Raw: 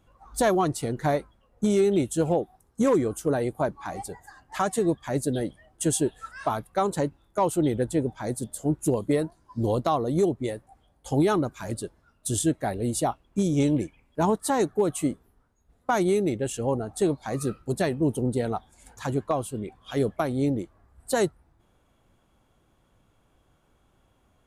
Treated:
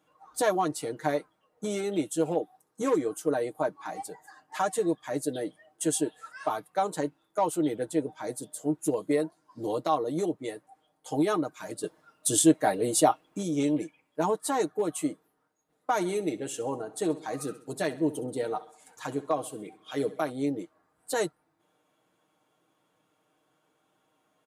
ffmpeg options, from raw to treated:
-filter_complex "[0:a]asettb=1/sr,asplit=3[a][b][c];[a]atrim=end=11.834[d];[b]atrim=start=11.83:end=13.38,asetpts=PTS-STARTPTS,afade=t=in:d=0.004:c=qsin,afade=t=out:st=1.546:d=0.004:c=qsin,acontrast=84[e];[c]atrim=start=13.376[f];[d][e]acrossfade=d=0.004:c1=hsin:c2=qsin[g];[g][f]acrossfade=d=0.004:c1=qsin:c2=hsin,asettb=1/sr,asplit=3[h][i][j];[h]atrim=end=15.924[k];[i]atrim=start=15.92:end=20.3,asetpts=PTS-STARTPTS,afade=t=in:d=0.004:c=qsin,afade=t=out:st=4.376:d=0.004:c=qsin,aecho=1:1:66|132|198|264:0.141|0.0692|0.0339|0.0166,atrim=end_sample=193158[l];[j]atrim=start=20.296[m];[k][l]acrossfade=d=0.004:c1=hsin:c2=qsin[n];[n][m]acrossfade=d=0.004:c1=qsin:c2=hsin,highpass=270,aecho=1:1:6.5:0.65,volume=-4dB"

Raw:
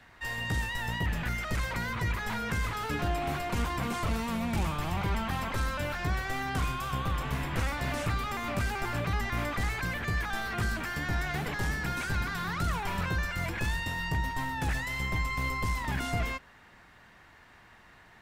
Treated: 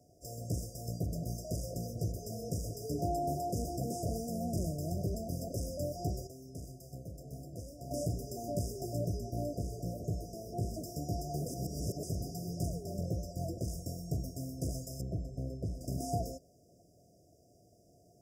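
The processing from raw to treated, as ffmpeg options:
-filter_complex "[0:a]asettb=1/sr,asplit=3[a][b][c];[a]atrim=end=9.174[d];[b]atrim=start=9.17:end=10.74,asetpts=PTS-STARTPTS,afade=t=in:d=0.004:c=qsin,afade=t=out:st=1.566:d=0.004:c=qsin,acrossover=split=3300[e][f];[f]acompressor=threshold=-50dB:ratio=4:attack=1:release=60[g];[e][g]amix=inputs=2:normalize=0[h];[c]atrim=start=10.736[i];[d][h]acrossfade=d=0.004:c1=hsin:c2=qsin[j];[j][i]acrossfade=d=0.004:c1=qsin:c2=hsin,asettb=1/sr,asplit=3[k][l][m];[k]atrim=end=12.684[n];[l]atrim=start=12.68:end=13.68,asetpts=PTS-STARTPTS,afade=t=in:d=0.004:c=qsin,afade=t=out:st=0.996:d=0.004:c=qsin,highshelf=f=5.2k:g=-6[o];[m]atrim=start=13.676[p];[n][o]acrossfade=d=0.004:c1=hsin:c2=qsin[q];[q][p]acrossfade=d=0.004:c1=qsin:c2=hsin,asettb=1/sr,asplit=3[r][s][t];[r]atrim=end=15.014[u];[s]atrim=start=15.01:end=15.81,asetpts=PTS-STARTPTS,afade=t=in:d=0.004:c=qsin,afade=t=out:st=0.796:d=0.004:c=qsin,lowpass=f=1.1k:p=1[v];[t]atrim=start=15.806[w];[u][v]acrossfade=d=0.004:c1=hsin:c2=qsin[x];[x][w]acrossfade=d=0.004:c1=qsin:c2=hsin,asplit=5[y][z][aa][ab][ac];[y]atrim=end=6.272[ad];[z]atrim=start=6.268:end=7.912,asetpts=PTS-STARTPTS,volume=-9.5dB[ae];[aa]atrim=start=7.908:end=11.482[af];[ab]atrim=start=11.478:end=12.032,asetpts=PTS-STARTPTS,areverse[ag];[ac]atrim=start=12.028[ah];[ad][ae]acrossfade=d=0.004:c1=hsin:c2=hsin[ai];[ai][af]acrossfade=d=0.004:c1=hsin:c2=hsin[aj];[aj][ag]acrossfade=d=0.004:c1=hsin:c2=hsin[ak];[ak][ah]acrossfade=d=0.004:c1=hsin:c2=hsin,highpass=96,equalizer=f=220:t=o:w=0.31:g=-7,afftfilt=real='re*(1-between(b*sr/4096,730,4800))':imag='im*(1-between(b*sr/4096,730,4800))':win_size=4096:overlap=0.75"

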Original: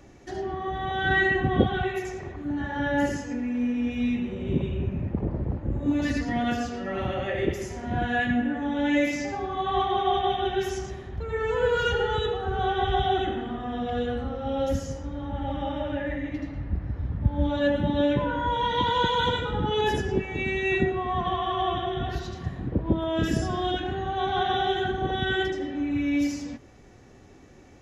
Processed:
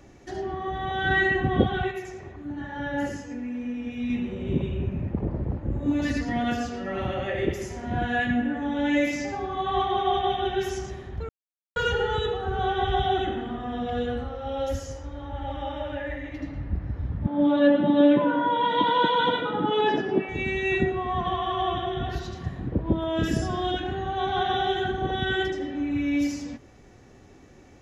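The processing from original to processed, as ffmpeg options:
-filter_complex "[0:a]asettb=1/sr,asplit=3[a][b][c];[a]atrim=end=1.914[d];[b]atrim=start=1.91:end=4.1,asetpts=PTS-STARTPTS,afade=t=in:d=0.004:c=qsin,afade=t=out:st=2.186:d=0.004:c=qsin,flanger=delay=5.6:depth=4.6:regen=-67:speed=1.1:shape=sinusoidal[e];[c]atrim=start=4.096[f];[d][e]acrossfade=d=0.004:c1=hsin:c2=qsin[g];[g][f]acrossfade=d=0.004:c1=qsin:c2=hsin,asettb=1/sr,asplit=3[h][i][j];[h]atrim=end=14.244[k];[i]atrim=start=14.24:end=16.41,asetpts=PTS-STARTPTS,afade=t=in:d=0.004:c=qsin,afade=t=out:st=2.166:d=0.004:c=qsin,equalizer=f=190:w=1.3:g=-13[l];[j]atrim=start=16.406[m];[k][l]acrossfade=d=0.004:c1=hsin:c2=qsin[n];[n][m]acrossfade=d=0.004:c1=qsin:c2=hsin,asettb=1/sr,asplit=3[o][p][q];[o]atrim=end=17.264[r];[p]atrim=start=17.26:end=20.29,asetpts=PTS-STARTPTS,afade=t=in:d=0.004:c=qsin,afade=t=out:st=3.026:d=0.004:c=qsin,highpass=f=160:w=0.5412,highpass=f=160:w=1.3066,equalizer=f=300:t=q:w=4:g=8,equalizer=f=670:t=q:w=4:g=9,equalizer=f=1.2k:t=q:w=4:g=6,lowpass=f=4.3k:w=0.5412,lowpass=f=4.3k:w=1.3066[s];[q]atrim=start=20.286[t];[r][s]acrossfade=d=0.004:c1=hsin:c2=qsin[u];[u][t]acrossfade=d=0.004:c1=qsin:c2=hsin,asplit=3[v][w][x];[v]atrim=end=11.29,asetpts=PTS-STARTPTS,afade=t=out:st=11.286:d=0.004:c=hsin[y];[w]atrim=start=11.29:end=11.76,asetpts=PTS-STARTPTS,volume=0[z];[x]atrim=start=11.76,asetpts=PTS-STARTPTS,afade=t=in:d=0.004:c=hsin[aa];[y][z][aa]concat=n=3:v=0:a=1"

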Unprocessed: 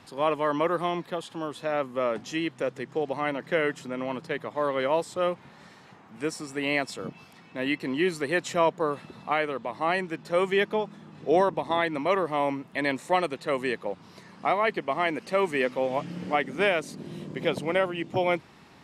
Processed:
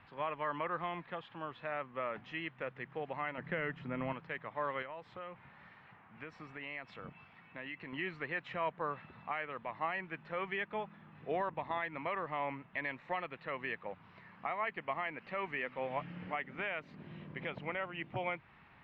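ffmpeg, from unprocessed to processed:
-filter_complex "[0:a]asettb=1/sr,asplit=3[a][b][c];[a]atrim=end=3.384[d];[b]atrim=start=3.38:end=4.13,asetpts=PTS-STARTPTS,afade=t=in:d=0.004:c=qsin,afade=t=out:st=0.746:d=0.004:c=qsin,lowshelf=f=350:g=11.5[e];[c]atrim=start=4.126[f];[d][e]acrossfade=d=0.004:c1=hsin:c2=qsin[g];[g][f]acrossfade=d=0.004:c1=qsin:c2=hsin,asettb=1/sr,asplit=3[h][i][j];[h]atrim=end=4.824[k];[i]atrim=start=4.82:end=7.93,asetpts=PTS-STARTPTS,afade=t=in:d=0.004:c=qsin,afade=t=out:st=3.106:d=0.004:c=qsin,acompressor=threshold=-31dB:ratio=10:attack=3.2:release=140:knee=1:detection=peak[l];[j]atrim=start=7.926[m];[k][l]acrossfade=d=0.004:c1=hsin:c2=qsin[n];[n][m]acrossfade=d=0.004:c1=qsin:c2=hsin,equalizer=f=340:t=o:w=2.5:g=-14,alimiter=limit=-23.5dB:level=0:latency=1:release=198,lowpass=f=2.5k:w=0.5412,lowpass=f=2.5k:w=1.3066,volume=-1dB"

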